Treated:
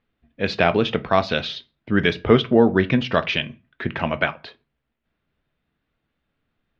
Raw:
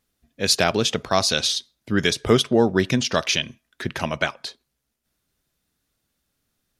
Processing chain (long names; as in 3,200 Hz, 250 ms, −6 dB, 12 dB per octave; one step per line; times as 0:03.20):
low-pass filter 3,000 Hz 24 dB per octave
on a send: convolution reverb RT60 0.30 s, pre-delay 4 ms, DRR 11 dB
on the sum: level +2 dB